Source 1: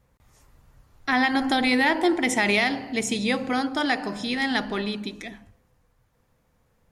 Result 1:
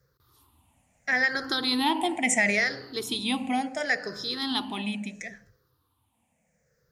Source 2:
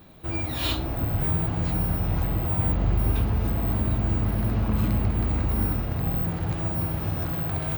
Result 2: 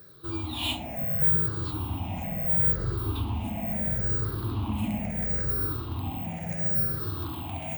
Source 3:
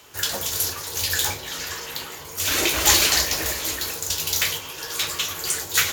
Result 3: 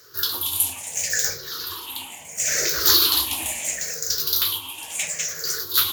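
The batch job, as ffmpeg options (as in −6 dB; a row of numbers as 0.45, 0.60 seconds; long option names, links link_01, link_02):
-af "afftfilt=real='re*pow(10,18/40*sin(2*PI*(0.57*log(max(b,1)*sr/1024/100)/log(2)-(-0.73)*(pts-256)/sr)))':imag='im*pow(10,18/40*sin(2*PI*(0.57*log(max(b,1)*sr/1024/100)/log(2)-(-0.73)*(pts-256)/sr)))':win_size=1024:overlap=0.75,highpass=73,highshelf=frequency=3700:gain=6.5,volume=-8dB"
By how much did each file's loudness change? −3.0, −1.5, +0.5 LU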